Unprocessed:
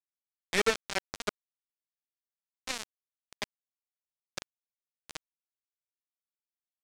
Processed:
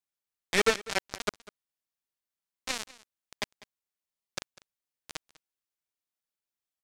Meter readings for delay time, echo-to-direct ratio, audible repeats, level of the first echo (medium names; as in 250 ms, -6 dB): 198 ms, -20.0 dB, 1, -20.0 dB